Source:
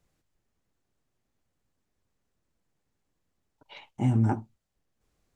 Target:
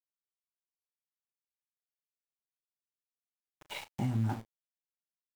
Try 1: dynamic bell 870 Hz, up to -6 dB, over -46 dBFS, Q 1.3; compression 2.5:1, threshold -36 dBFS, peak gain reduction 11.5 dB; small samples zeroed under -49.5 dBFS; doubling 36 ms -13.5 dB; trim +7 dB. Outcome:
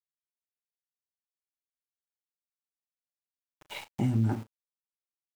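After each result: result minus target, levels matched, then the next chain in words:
1 kHz band -5.5 dB; compression: peak gain reduction -4 dB
dynamic bell 390 Hz, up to -6 dB, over -46 dBFS, Q 1.3; compression 2.5:1, threshold -36 dBFS, peak gain reduction 11 dB; small samples zeroed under -49.5 dBFS; doubling 36 ms -13.5 dB; trim +7 dB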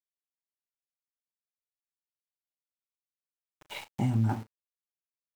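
compression: peak gain reduction -4.5 dB
dynamic bell 390 Hz, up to -6 dB, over -46 dBFS, Q 1.3; compression 2.5:1, threshold -43.5 dBFS, peak gain reduction 15.5 dB; small samples zeroed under -49.5 dBFS; doubling 36 ms -13.5 dB; trim +7 dB

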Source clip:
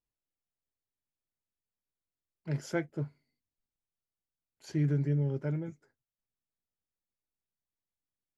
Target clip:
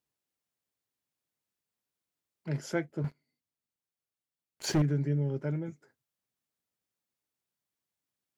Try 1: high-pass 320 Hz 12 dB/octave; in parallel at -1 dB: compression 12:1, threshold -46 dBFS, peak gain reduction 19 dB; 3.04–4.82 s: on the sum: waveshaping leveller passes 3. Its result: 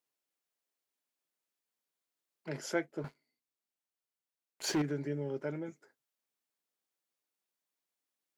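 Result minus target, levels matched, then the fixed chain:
125 Hz band -7.0 dB
high-pass 110 Hz 12 dB/octave; in parallel at -1 dB: compression 12:1, threshold -46 dBFS, peak gain reduction 21 dB; 3.04–4.82 s: on the sum: waveshaping leveller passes 3

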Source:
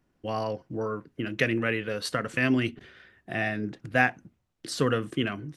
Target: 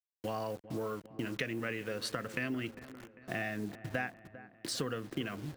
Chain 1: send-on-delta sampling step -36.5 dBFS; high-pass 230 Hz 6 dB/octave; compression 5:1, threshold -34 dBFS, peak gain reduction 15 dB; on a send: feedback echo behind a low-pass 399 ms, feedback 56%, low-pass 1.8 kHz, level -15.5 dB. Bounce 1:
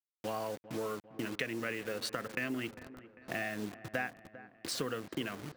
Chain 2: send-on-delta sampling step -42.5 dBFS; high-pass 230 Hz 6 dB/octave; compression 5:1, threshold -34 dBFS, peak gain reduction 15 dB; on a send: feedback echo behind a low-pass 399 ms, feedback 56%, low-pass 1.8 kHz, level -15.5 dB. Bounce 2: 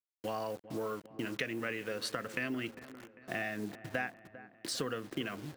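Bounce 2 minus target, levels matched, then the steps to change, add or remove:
125 Hz band -4.0 dB
change: high-pass 64 Hz 6 dB/octave

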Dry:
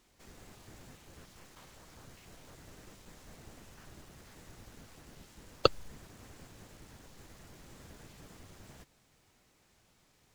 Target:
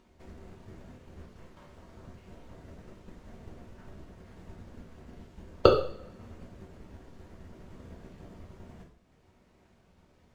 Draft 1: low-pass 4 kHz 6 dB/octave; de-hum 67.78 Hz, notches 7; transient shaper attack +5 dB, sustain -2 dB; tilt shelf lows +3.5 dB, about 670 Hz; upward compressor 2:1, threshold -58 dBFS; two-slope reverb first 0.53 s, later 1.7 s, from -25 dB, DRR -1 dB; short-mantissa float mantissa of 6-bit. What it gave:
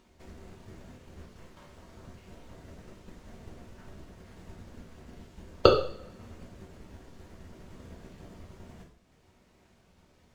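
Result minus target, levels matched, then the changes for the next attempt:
4 kHz band +3.5 dB
change: low-pass 1.9 kHz 6 dB/octave

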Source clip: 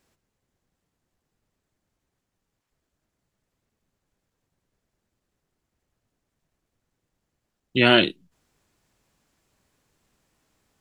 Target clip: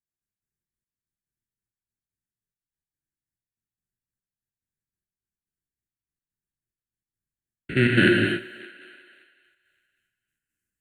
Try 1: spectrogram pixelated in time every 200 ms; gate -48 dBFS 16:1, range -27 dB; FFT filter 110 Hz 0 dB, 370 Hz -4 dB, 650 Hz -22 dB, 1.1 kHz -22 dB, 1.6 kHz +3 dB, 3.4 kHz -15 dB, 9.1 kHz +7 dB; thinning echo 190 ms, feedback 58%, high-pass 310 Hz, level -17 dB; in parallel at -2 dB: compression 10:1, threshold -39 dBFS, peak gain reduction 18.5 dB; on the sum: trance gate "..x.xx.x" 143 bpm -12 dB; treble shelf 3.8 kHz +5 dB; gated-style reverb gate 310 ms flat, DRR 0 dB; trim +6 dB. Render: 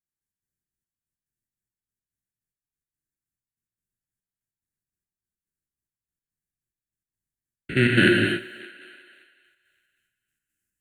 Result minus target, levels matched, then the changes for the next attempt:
8 kHz band +4.0 dB
remove: treble shelf 3.8 kHz +5 dB

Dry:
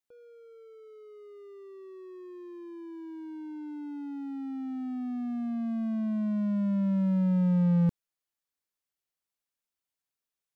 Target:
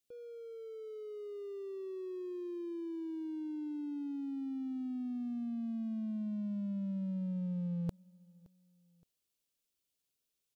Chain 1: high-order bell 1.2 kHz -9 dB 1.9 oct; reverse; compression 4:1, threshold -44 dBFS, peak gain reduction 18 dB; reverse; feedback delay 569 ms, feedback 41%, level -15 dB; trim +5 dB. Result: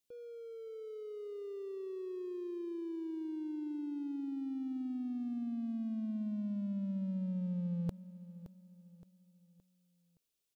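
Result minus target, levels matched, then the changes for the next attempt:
echo-to-direct +10.5 dB
change: feedback delay 569 ms, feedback 41%, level -25.5 dB

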